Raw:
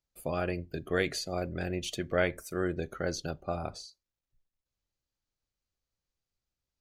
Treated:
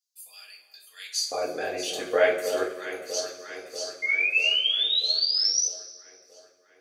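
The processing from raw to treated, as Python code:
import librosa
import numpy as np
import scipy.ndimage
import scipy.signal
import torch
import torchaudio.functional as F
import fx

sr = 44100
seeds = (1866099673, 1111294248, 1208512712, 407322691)

y = fx.filter_lfo_highpass(x, sr, shape='square', hz=0.38, low_hz=470.0, high_hz=5100.0, q=1.7)
y = fx.echo_alternate(y, sr, ms=320, hz=970.0, feedback_pct=78, wet_db=-8.0)
y = fx.spec_paint(y, sr, seeds[0], shape='rise', start_s=4.02, length_s=1.64, low_hz=2100.0, high_hz=6100.0, level_db=-30.0)
y = fx.rev_double_slope(y, sr, seeds[1], early_s=0.3, late_s=1.5, knee_db=-16, drr_db=-4.5)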